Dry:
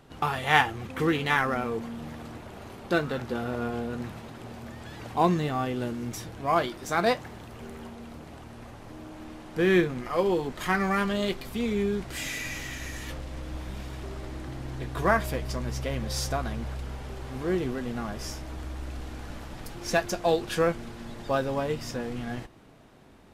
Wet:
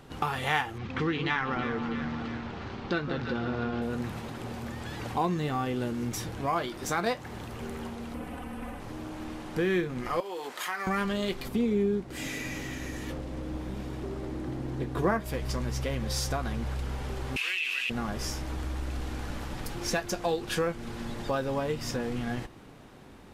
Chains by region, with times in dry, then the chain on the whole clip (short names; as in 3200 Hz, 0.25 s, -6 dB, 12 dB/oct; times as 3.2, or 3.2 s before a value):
0.78–3.82 LPF 5300 Hz 24 dB/oct + bell 540 Hz -4.5 dB 0.98 oct + echo with dull and thin repeats by turns 0.163 s, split 1100 Hz, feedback 70%, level -9 dB
8.14–8.8 band shelf 5100 Hz -9 dB 1.2 oct + comb 4 ms, depth 80%
10.2–10.87 HPF 620 Hz + compressor 2:1, threshold -37 dBFS + high shelf 10000 Hz +4.5 dB
11.48–15.26 bell 300 Hz +10.5 dB 2.9 oct + upward expander, over -30 dBFS
17.36–17.9 resonant high-pass 2600 Hz, resonance Q 15 + fast leveller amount 70%
whole clip: notch 650 Hz, Q 12; compressor 2.5:1, threshold -33 dBFS; gain +4 dB